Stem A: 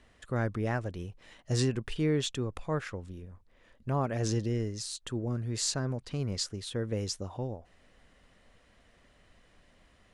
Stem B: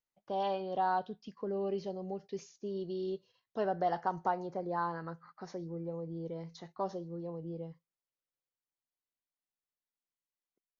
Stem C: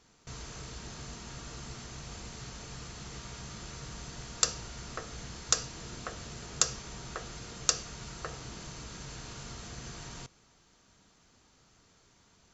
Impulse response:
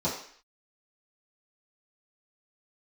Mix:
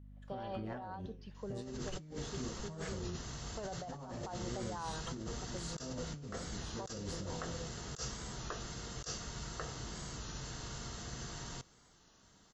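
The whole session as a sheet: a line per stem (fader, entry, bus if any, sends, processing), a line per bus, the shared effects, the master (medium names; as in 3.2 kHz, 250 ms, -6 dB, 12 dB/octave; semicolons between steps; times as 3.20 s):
-10.0 dB, 0.00 s, send -7.5 dB, tremolo saw up 0.95 Hz, depth 90%; treble shelf 4.9 kHz -7.5 dB
-7.0 dB, 0.00 s, no send, peaking EQ 310 Hz -9 dB 0.55 oct; hum 50 Hz, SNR 10 dB
-4.0 dB, 1.35 s, no send, band-stop 2.4 kHz, Q 6.1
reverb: on, RT60 0.55 s, pre-delay 3 ms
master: compressor with a negative ratio -42 dBFS, ratio -1; warped record 33 1/3 rpm, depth 100 cents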